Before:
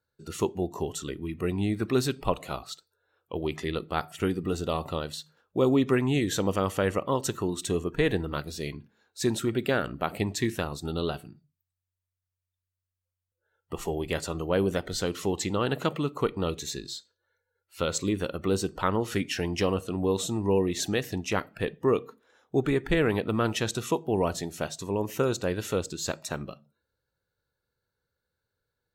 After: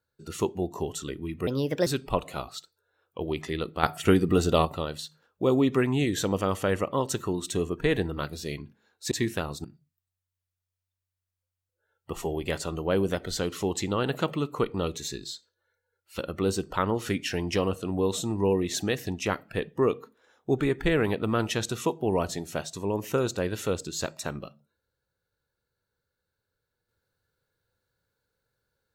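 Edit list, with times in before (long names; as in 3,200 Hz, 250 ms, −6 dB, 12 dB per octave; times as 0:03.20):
0:01.47–0:02.01: play speed 137%
0:03.98–0:04.80: clip gain +7 dB
0:09.26–0:10.33: remove
0:10.86–0:11.27: remove
0:17.81–0:18.24: remove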